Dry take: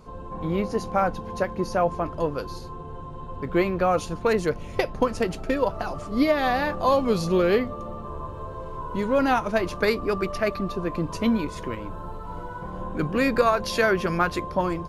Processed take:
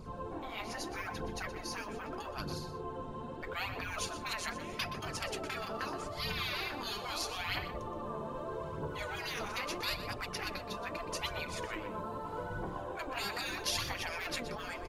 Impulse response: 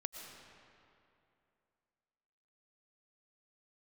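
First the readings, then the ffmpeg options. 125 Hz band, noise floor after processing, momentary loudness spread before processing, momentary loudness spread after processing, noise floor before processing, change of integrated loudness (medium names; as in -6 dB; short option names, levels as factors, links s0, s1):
-12.5 dB, -44 dBFS, 14 LU, 6 LU, -37 dBFS, -13.5 dB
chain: -filter_complex "[0:a]afftfilt=real='re*lt(hypot(re,im),0.0891)':imag='im*lt(hypot(re,im),0.0891)':win_size=1024:overlap=0.75,aphaser=in_gain=1:out_gain=1:delay=5:decay=0.48:speed=0.79:type=triangular,asplit=2[s0][s1];[s1]adelay=122.4,volume=0.282,highshelf=f=4000:g=-2.76[s2];[s0][s2]amix=inputs=2:normalize=0,volume=0.794"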